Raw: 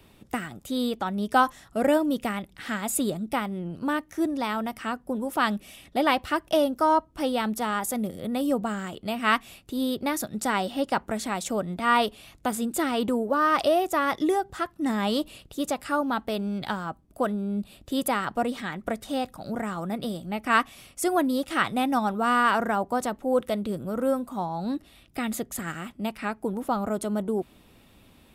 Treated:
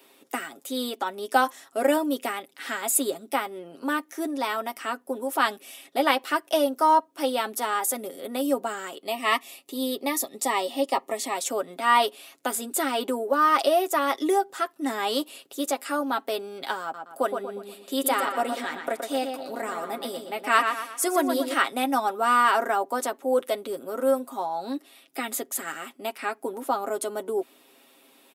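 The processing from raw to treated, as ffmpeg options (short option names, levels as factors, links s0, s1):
-filter_complex "[0:a]asettb=1/sr,asplit=3[s0][s1][s2];[s0]atrim=end=9.044[s3];[s1]atrim=start=9.04:end=11.36,asetpts=PTS-STARTPTS,afade=t=in:d=0.004:c=qsin,afade=t=out:st=2.316:d=0.004:c=qsin,asuperstop=centerf=1500:order=12:qfactor=4.1[s4];[s2]atrim=start=11.356[s5];[s3][s4]acrossfade=d=0.004:c1=hsin:c2=qsin[s6];[s6][s5]acrossfade=d=0.004:c1=qsin:c2=hsin,asettb=1/sr,asplit=3[s7][s8][s9];[s7]atrim=end=16.824[s10];[s8]atrim=start=16.82:end=21.54,asetpts=PTS-STARTPTS,afade=t=in:d=0.004:c=qsin,afade=t=out:st=4.716:d=0.004:c=qsin,asplit=2[s11][s12];[s12]adelay=119,lowpass=f=4600:p=1,volume=0.501,asplit=2[s13][s14];[s14]adelay=119,lowpass=f=4600:p=1,volume=0.43,asplit=2[s15][s16];[s16]adelay=119,lowpass=f=4600:p=1,volume=0.43,asplit=2[s17][s18];[s18]adelay=119,lowpass=f=4600:p=1,volume=0.43,asplit=2[s19][s20];[s20]adelay=119,lowpass=f=4600:p=1,volume=0.43[s21];[s11][s13][s15][s17][s19][s21]amix=inputs=6:normalize=0,atrim=end_sample=208152[s22];[s9]atrim=start=21.536[s23];[s10][s22]acrossfade=d=0.004:c1=hsin:c2=qsin[s24];[s24][s23]acrossfade=d=0.004:c1=qsin:c2=hsin,highpass=f=300:w=0.5412,highpass=f=300:w=1.3066,highshelf=f=6900:g=6.5,aecho=1:1:7.4:0.55"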